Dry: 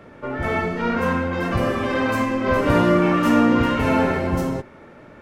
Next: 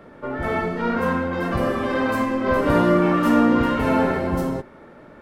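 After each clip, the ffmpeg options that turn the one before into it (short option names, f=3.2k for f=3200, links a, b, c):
-af "equalizer=f=100:t=o:w=0.67:g=-6,equalizer=f=2.5k:t=o:w=0.67:g=-5,equalizer=f=6.3k:t=o:w=0.67:g=-5"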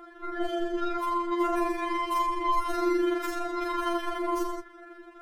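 -filter_complex "[0:a]tremolo=f=24:d=0.974,acrossover=split=140|3000[a][b][c];[b]acompressor=threshold=-28dB:ratio=6[d];[a][d][c]amix=inputs=3:normalize=0,afftfilt=real='re*4*eq(mod(b,16),0)':imag='im*4*eq(mod(b,16),0)':win_size=2048:overlap=0.75,volume=5dB"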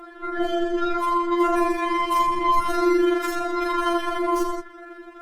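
-af "volume=6.5dB" -ar 48000 -c:a libopus -b:a 24k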